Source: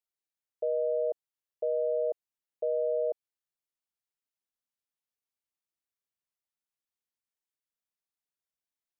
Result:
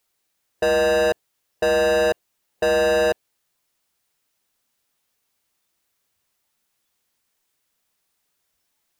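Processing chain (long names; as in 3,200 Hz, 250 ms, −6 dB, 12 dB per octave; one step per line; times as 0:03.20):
converter with a step at zero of −50.5 dBFS
noise reduction from a noise print of the clip's start 10 dB
leveller curve on the samples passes 5
level +6 dB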